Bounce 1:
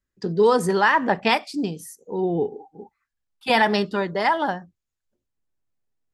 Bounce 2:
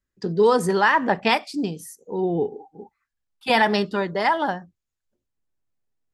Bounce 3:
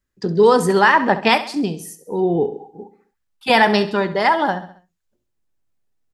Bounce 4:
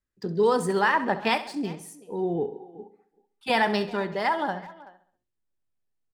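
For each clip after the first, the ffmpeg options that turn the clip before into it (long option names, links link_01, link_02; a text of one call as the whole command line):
ffmpeg -i in.wav -af anull out.wav
ffmpeg -i in.wav -af "aecho=1:1:67|134|201|268:0.2|0.0938|0.0441|0.0207,volume=4.5dB" out.wav
ffmpeg -i in.wav -filter_complex "[0:a]adynamicsmooth=sensitivity=6:basefreq=8000,aexciter=amount=1.4:drive=7.9:freq=8200,asplit=2[link_01][link_02];[link_02]adelay=380,highpass=300,lowpass=3400,asoftclip=type=hard:threshold=-10.5dB,volume=-19dB[link_03];[link_01][link_03]amix=inputs=2:normalize=0,volume=-9dB" out.wav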